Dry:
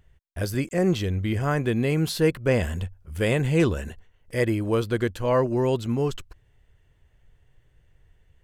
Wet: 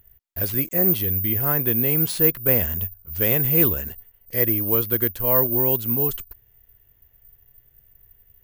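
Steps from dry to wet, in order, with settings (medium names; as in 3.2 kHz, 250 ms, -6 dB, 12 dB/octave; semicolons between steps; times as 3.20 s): careless resampling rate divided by 3×, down none, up zero stuff; trim -2 dB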